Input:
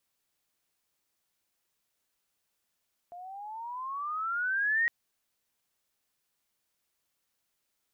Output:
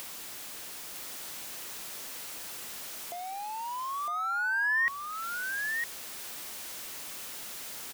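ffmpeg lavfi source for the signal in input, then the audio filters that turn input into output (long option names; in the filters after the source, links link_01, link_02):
-f lavfi -i "aevalsrc='pow(10,(-23+19*(t/1.76-1))/20)*sin(2*PI*691*1.76/(17.5*log(2)/12)*(exp(17.5*log(2)/12*t/1.76)-1))':duration=1.76:sample_rate=44100"
-filter_complex "[0:a]aeval=exprs='val(0)+0.5*0.00708*sgn(val(0))':channel_layout=same,acrossover=split=150[link_01][link_02];[link_02]acompressor=mode=upward:threshold=-36dB:ratio=2.5[link_03];[link_01][link_03]amix=inputs=2:normalize=0,aecho=1:1:958:0.531"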